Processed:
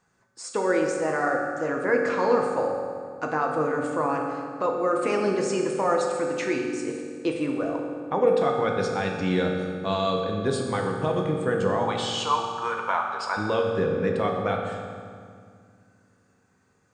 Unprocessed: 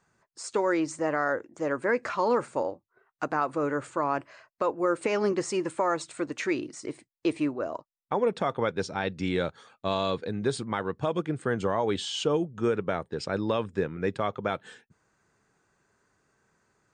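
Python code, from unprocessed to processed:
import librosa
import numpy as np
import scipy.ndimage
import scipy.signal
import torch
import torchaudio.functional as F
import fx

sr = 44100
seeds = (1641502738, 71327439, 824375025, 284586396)

y = fx.highpass_res(x, sr, hz=980.0, q=9.2, at=(11.82, 13.36), fade=0.02)
y = fx.rev_fdn(y, sr, rt60_s=2.1, lf_ratio=1.5, hf_ratio=0.75, size_ms=12.0, drr_db=0.0)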